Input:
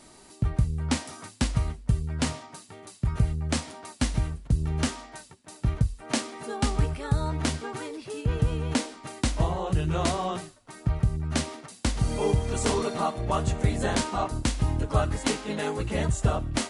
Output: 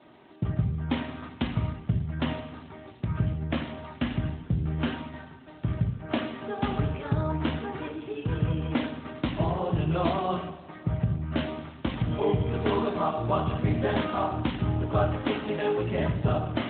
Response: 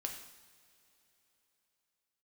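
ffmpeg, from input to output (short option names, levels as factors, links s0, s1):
-filter_complex "[1:a]atrim=start_sample=2205[s0];[0:a][s0]afir=irnorm=-1:irlink=0,volume=1.33" -ar 8000 -c:a libopencore_amrnb -b:a 12200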